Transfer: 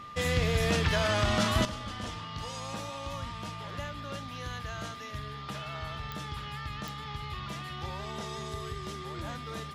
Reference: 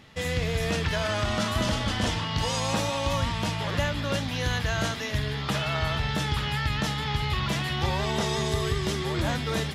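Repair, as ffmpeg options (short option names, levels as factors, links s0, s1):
-af "adeclick=t=4,bandreject=f=1200:w=30,asetnsamples=n=441:p=0,asendcmd='1.65 volume volume 12dB',volume=1"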